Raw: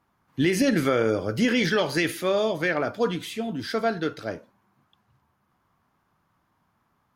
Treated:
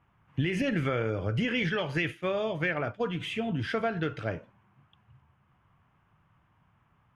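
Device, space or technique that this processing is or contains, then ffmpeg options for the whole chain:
jukebox: -filter_complex "[0:a]lowpass=8k,lowshelf=f=180:t=q:w=1.5:g=7,acompressor=threshold=-26dB:ratio=5,asplit=3[a][b][c];[a]afade=t=out:st=1.41:d=0.02[d];[b]agate=range=-33dB:threshold=-27dB:ratio=3:detection=peak,afade=t=in:st=1.41:d=0.02,afade=t=out:st=3.19:d=0.02[e];[c]afade=t=in:st=3.19:d=0.02[f];[d][e][f]amix=inputs=3:normalize=0,highshelf=f=3.5k:t=q:w=3:g=-6.5"

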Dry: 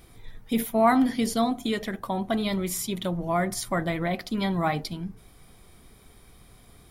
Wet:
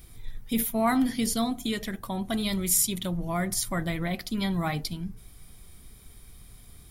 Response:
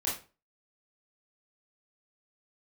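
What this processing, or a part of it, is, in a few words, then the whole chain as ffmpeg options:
smiley-face EQ: -filter_complex "[0:a]lowshelf=f=93:g=6.5,equalizer=f=650:t=o:w=2.7:g=-6.5,highshelf=f=6.7k:g=7,asettb=1/sr,asplit=3[a][b][c];[a]atrim=end=2.254[d];[b]atrim=start=2.25:end=2.99,asetpts=PTS-STARTPTS,afade=t=in:d=0.004:c=qsin,afade=t=out:st=0.736:d=0.004:c=qsin,equalizer=f=8.8k:t=o:w=1.5:g=5[e];[c]atrim=start=2.986[f];[d][e]acrossfade=d=0.004:c1=hsin:c2=qsin[g];[g][f]acrossfade=d=0.004:c1=qsin:c2=hsin"

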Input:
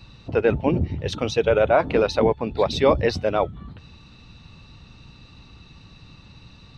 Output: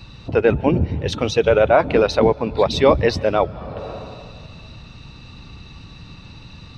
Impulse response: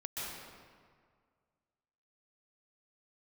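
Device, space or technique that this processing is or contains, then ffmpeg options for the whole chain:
ducked reverb: -filter_complex "[0:a]asplit=3[a][b][c];[1:a]atrim=start_sample=2205[d];[b][d]afir=irnorm=-1:irlink=0[e];[c]apad=whole_len=298590[f];[e][f]sidechaincompress=threshold=-42dB:ratio=4:attack=6.8:release=265,volume=-3.5dB[g];[a][g]amix=inputs=2:normalize=0,volume=3.5dB"

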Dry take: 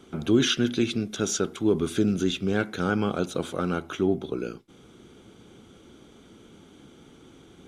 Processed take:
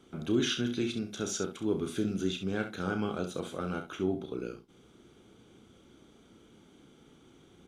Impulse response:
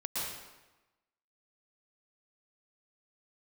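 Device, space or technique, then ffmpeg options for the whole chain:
slapback doubling: -filter_complex "[0:a]asplit=3[a][b][c];[b]adelay=32,volume=-8dB[d];[c]adelay=66,volume=-10dB[e];[a][d][e]amix=inputs=3:normalize=0,volume=-8dB"

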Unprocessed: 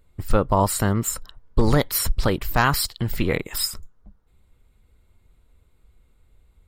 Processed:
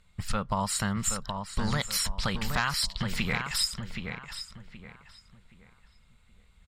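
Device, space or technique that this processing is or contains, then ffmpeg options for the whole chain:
jukebox: -filter_complex "[0:a]lowpass=7k,tiltshelf=f=680:g=-10,lowshelf=f=250:t=q:w=3:g=7,acompressor=threshold=-25dB:ratio=3,asplit=2[a][b];[b]adelay=773,lowpass=f=3.1k:p=1,volume=-6dB,asplit=2[c][d];[d]adelay=773,lowpass=f=3.1k:p=1,volume=0.31,asplit=2[e][f];[f]adelay=773,lowpass=f=3.1k:p=1,volume=0.31,asplit=2[g][h];[h]adelay=773,lowpass=f=3.1k:p=1,volume=0.31[i];[a][c][e][g][i]amix=inputs=5:normalize=0,volume=-2.5dB"

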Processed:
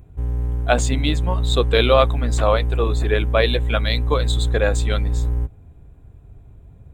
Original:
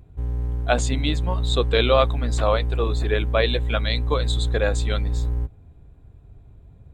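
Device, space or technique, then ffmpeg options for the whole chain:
exciter from parts: -filter_complex "[0:a]asplit=2[a][b];[b]highpass=f=4k:w=0.5412,highpass=f=4k:w=1.3066,asoftclip=type=tanh:threshold=-38dB,volume=-5dB[c];[a][c]amix=inputs=2:normalize=0,volume=3dB"

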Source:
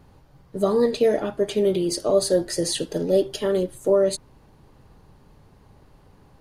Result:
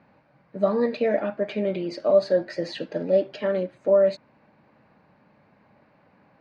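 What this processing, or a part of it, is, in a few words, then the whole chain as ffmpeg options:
kitchen radio: -af "highpass=200,equalizer=f=210:t=q:w=4:g=5,equalizer=f=400:t=q:w=4:g=-8,equalizer=f=600:t=q:w=4:g=6,equalizer=f=1.6k:t=q:w=4:g=5,equalizer=f=2.3k:t=q:w=4:g=8,equalizer=f=3.3k:t=q:w=4:g=-9,lowpass=f=3.9k:w=0.5412,lowpass=f=3.9k:w=1.3066,volume=-2.5dB"

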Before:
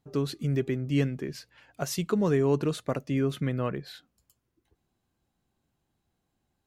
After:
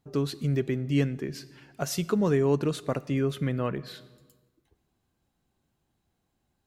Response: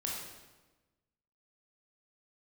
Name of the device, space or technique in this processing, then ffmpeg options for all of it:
ducked reverb: -filter_complex "[0:a]asplit=3[a][b][c];[1:a]atrim=start_sample=2205[d];[b][d]afir=irnorm=-1:irlink=0[e];[c]apad=whole_len=294036[f];[e][f]sidechaincompress=threshold=-28dB:ratio=8:attack=11:release=863,volume=-12.5dB[g];[a][g]amix=inputs=2:normalize=0"

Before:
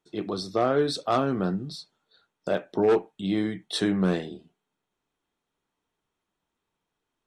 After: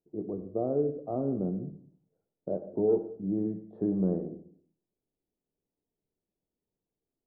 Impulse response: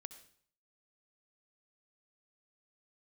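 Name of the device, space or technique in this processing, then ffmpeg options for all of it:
next room: -filter_complex "[0:a]lowpass=f=600:w=0.5412,lowpass=f=600:w=1.3066[a];[1:a]atrim=start_sample=2205[b];[a][b]afir=irnorm=-1:irlink=0,asettb=1/sr,asplit=3[c][d][e];[c]atrim=end=3.384[f];[d]atrim=start=3.38:end=4.29,asetpts=PTS-STARTPTS,afade=t=in:d=0.004:c=qsin,afade=t=out:st=0.906:d=0.004:c=qsin,highshelf=f=2.1k:g=9.5[g];[e]atrim=start=4.286[h];[f][g]acrossfade=d=0.004:c1=hsin:c2=qsin[i];[i][h]acrossfade=d=0.004:c1=qsin:c2=hsin,volume=1.5dB"

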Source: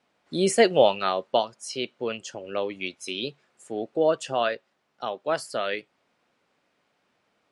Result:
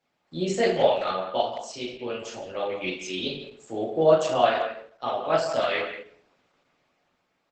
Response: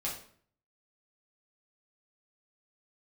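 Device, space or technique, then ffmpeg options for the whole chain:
speakerphone in a meeting room: -filter_complex "[1:a]atrim=start_sample=2205[a];[0:a][a]afir=irnorm=-1:irlink=0,asplit=2[b][c];[c]adelay=170,highpass=300,lowpass=3.4k,asoftclip=type=hard:threshold=-11dB,volume=-10dB[d];[b][d]amix=inputs=2:normalize=0,dynaudnorm=f=310:g=9:m=15.5dB,volume=-6dB" -ar 48000 -c:a libopus -b:a 12k

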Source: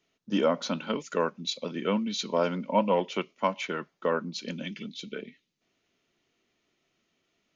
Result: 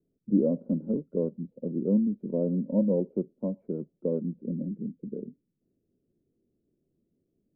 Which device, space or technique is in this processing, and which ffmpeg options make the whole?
under water: -af "lowpass=f=420:w=0.5412,lowpass=f=420:w=1.3066,lowshelf=f=320:g=7.5,equalizer=f=540:t=o:w=0.33:g=5"

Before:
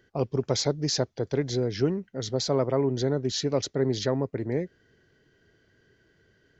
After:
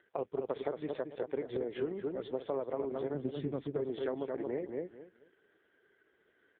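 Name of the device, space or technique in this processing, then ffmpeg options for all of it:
voicemail: -filter_complex "[0:a]asplit=3[a][b][c];[a]afade=t=out:st=3.13:d=0.02[d];[b]asubboost=boost=9.5:cutoff=210,afade=t=in:st=3.13:d=0.02,afade=t=out:st=3.6:d=0.02[e];[c]afade=t=in:st=3.6:d=0.02[f];[d][e][f]amix=inputs=3:normalize=0,highpass=350,lowpass=3k,asplit=2[g][h];[h]adelay=221,lowpass=f=2.5k:p=1,volume=-5.5dB,asplit=2[i][j];[j]adelay=221,lowpass=f=2.5k:p=1,volume=0.22,asplit=2[k][l];[l]adelay=221,lowpass=f=2.5k:p=1,volume=0.22[m];[g][i][k][m]amix=inputs=4:normalize=0,acompressor=threshold=-31dB:ratio=6" -ar 8000 -c:a libopencore_amrnb -b:a 4750

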